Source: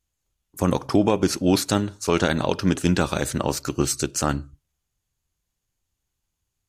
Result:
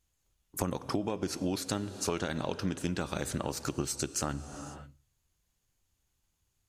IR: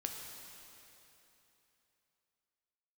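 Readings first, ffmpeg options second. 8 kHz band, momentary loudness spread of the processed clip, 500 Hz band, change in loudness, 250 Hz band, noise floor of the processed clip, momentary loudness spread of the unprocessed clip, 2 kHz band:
-8.0 dB, 9 LU, -12.0 dB, -11.5 dB, -12.5 dB, -79 dBFS, 5 LU, -11.5 dB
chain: -filter_complex "[0:a]asplit=2[a][b];[1:a]atrim=start_sample=2205,afade=t=out:st=0.36:d=0.01,atrim=end_sample=16317,asetrate=25137,aresample=44100[c];[b][c]afir=irnorm=-1:irlink=0,volume=-15dB[d];[a][d]amix=inputs=2:normalize=0,acompressor=threshold=-30dB:ratio=6"

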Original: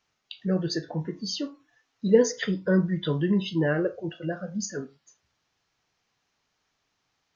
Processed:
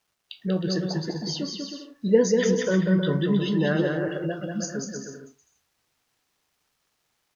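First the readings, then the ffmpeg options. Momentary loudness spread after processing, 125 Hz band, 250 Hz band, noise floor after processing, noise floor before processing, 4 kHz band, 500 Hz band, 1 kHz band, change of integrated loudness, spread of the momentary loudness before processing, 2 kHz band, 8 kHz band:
13 LU, +2.5 dB, +2.5 dB, -75 dBFS, -77 dBFS, +2.0 dB, +2.0 dB, +2.5 dB, +2.0 dB, 13 LU, +2.0 dB, n/a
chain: -af "acrusher=bits=11:mix=0:aa=0.000001,aecho=1:1:190|313.5|393.8|446|479.9:0.631|0.398|0.251|0.158|0.1"

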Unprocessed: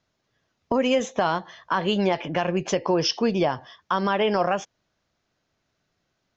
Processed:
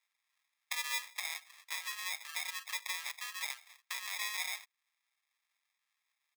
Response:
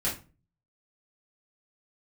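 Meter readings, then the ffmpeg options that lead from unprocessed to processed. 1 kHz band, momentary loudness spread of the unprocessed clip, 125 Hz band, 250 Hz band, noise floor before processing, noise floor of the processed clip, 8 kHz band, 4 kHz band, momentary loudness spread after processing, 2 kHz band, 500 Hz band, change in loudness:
-22.0 dB, 6 LU, under -40 dB, under -40 dB, -76 dBFS, under -85 dBFS, n/a, -9.0 dB, 7 LU, -7.0 dB, under -40 dB, -14.0 dB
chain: -af "acompressor=threshold=-36dB:ratio=2,aecho=1:1:7.4:0.57,acrusher=samples=30:mix=1:aa=0.000001,highpass=f=1.4k:w=0.5412,highpass=f=1.4k:w=1.3066"

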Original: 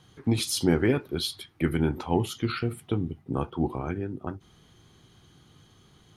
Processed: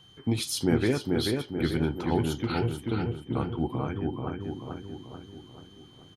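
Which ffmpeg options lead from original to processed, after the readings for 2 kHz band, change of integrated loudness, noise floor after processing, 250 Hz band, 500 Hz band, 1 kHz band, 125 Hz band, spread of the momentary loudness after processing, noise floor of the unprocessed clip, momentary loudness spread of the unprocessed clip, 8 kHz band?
-1.0 dB, -1.0 dB, -53 dBFS, -0.5 dB, -0.5 dB, -0.5 dB, 0.0 dB, 17 LU, -59 dBFS, 9 LU, -2.5 dB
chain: -filter_complex "[0:a]aeval=exprs='val(0)+0.00251*sin(2*PI*3100*n/s)':c=same,asplit=2[a][b];[b]adelay=436,lowpass=f=2.4k:p=1,volume=-3dB,asplit=2[c][d];[d]adelay=436,lowpass=f=2.4k:p=1,volume=0.53,asplit=2[e][f];[f]adelay=436,lowpass=f=2.4k:p=1,volume=0.53,asplit=2[g][h];[h]adelay=436,lowpass=f=2.4k:p=1,volume=0.53,asplit=2[i][j];[j]adelay=436,lowpass=f=2.4k:p=1,volume=0.53,asplit=2[k][l];[l]adelay=436,lowpass=f=2.4k:p=1,volume=0.53,asplit=2[m][n];[n]adelay=436,lowpass=f=2.4k:p=1,volume=0.53[o];[a][c][e][g][i][k][m][o]amix=inputs=8:normalize=0,volume=-2.5dB"

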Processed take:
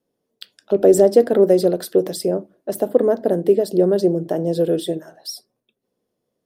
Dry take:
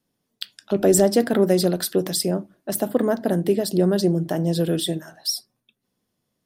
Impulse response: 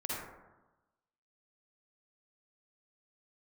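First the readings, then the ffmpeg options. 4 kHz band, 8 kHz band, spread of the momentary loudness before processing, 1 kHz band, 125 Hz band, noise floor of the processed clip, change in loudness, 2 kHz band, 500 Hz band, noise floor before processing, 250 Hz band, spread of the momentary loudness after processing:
-6.5 dB, -6.5 dB, 10 LU, +1.0 dB, -3.5 dB, -78 dBFS, +4.0 dB, n/a, +6.0 dB, -77 dBFS, +0.5 dB, 15 LU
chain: -af "equalizer=f=470:w=1:g=14.5,volume=-6.5dB"

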